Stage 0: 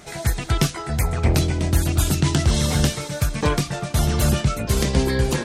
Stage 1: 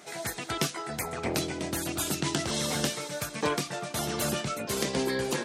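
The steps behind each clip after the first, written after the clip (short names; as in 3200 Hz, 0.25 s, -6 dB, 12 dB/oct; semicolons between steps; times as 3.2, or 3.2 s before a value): HPF 250 Hz 12 dB/oct; gain -5 dB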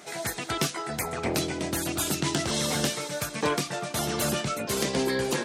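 soft clip -17.5 dBFS, distortion -23 dB; gain +3 dB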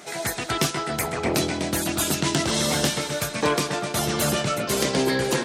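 analogue delay 0.13 s, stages 4096, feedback 62%, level -9.5 dB; gain +4 dB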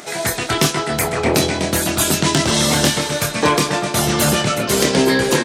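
upward compressor, threshold -45 dBFS; doubler 26 ms -7.5 dB; gain +6.5 dB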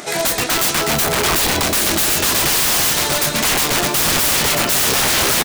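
wrapped overs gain 15 dB; echo 0.309 s -15.5 dB; gain +4 dB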